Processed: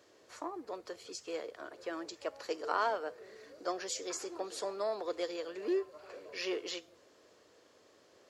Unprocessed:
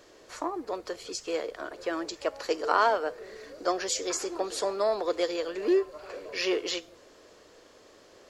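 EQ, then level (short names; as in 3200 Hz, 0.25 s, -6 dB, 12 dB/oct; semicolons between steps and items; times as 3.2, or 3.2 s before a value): HPF 75 Hz 24 dB/oct; -8.5 dB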